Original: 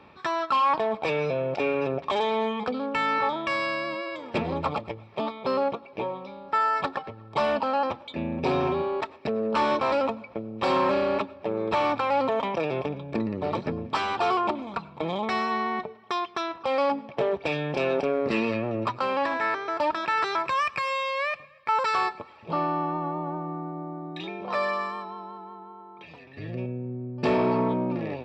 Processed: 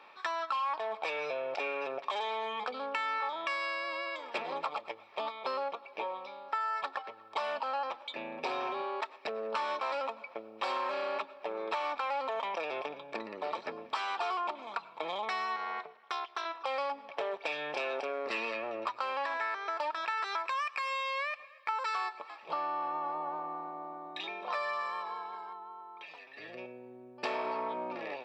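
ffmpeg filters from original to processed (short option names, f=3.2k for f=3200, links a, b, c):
-filter_complex "[0:a]asettb=1/sr,asplit=3[a][b][c];[a]atrim=end=15.564[d];[b]atrim=start=15.56:end=16.46,asetpts=PTS-STARTPTS,afade=t=in:d=0.004:c=qsin,afade=t=out:st=0.896:d=0.004:c=qsin,tremolo=f=280:d=0.947[e];[c]atrim=start=16.456[f];[d][e]acrossfade=d=0.004:c1=hsin:c2=qsin[g];[g][f]acrossfade=d=0.004:c1=qsin:c2=hsin,asettb=1/sr,asplit=3[h][i][j];[h]atrim=end=22.034[k];[i]atrim=start=22.03:end=25.53,asetpts=PTS-STARTPTS,afade=t=in:d=0.004:c=qsin,afade=t=out:st=3.496:d=0.004:c=qsin,asplit=6[l][m][n][o][p][q];[m]adelay=264,afreqshift=-58,volume=-19dB[r];[n]adelay=528,afreqshift=-116,volume=-23.7dB[s];[o]adelay=792,afreqshift=-174,volume=-28.5dB[t];[p]adelay=1056,afreqshift=-232,volume=-33.2dB[u];[q]adelay=1320,afreqshift=-290,volume=-37.9dB[v];[l][r][s][t][u][v]amix=inputs=6:normalize=0,atrim=end_sample=154350[w];[j]atrim=start=25.526[x];[k][w]acrossfade=d=0.004:c1=hsin:c2=qsin[y];[y][x]acrossfade=d=0.004:c1=qsin:c2=hsin,highpass=710,acompressor=threshold=-32dB:ratio=4"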